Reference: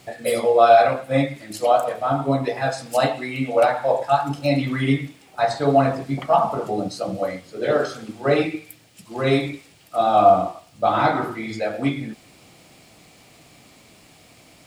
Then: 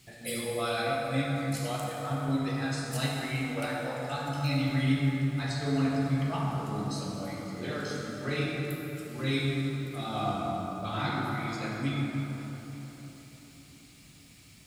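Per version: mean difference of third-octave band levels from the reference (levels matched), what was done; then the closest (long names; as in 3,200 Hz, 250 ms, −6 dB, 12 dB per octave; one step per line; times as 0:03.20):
9.5 dB: guitar amp tone stack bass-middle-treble 6-0-2
dense smooth reverb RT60 4.1 s, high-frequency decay 0.5×, DRR −2.5 dB
level +8.5 dB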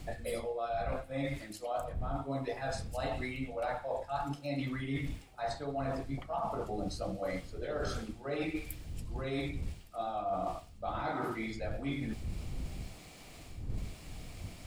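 5.5 dB: wind on the microphone 83 Hz −29 dBFS
reversed playback
downward compressor 10 to 1, threshold −30 dBFS, peak gain reduction 22 dB
reversed playback
level −3 dB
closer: second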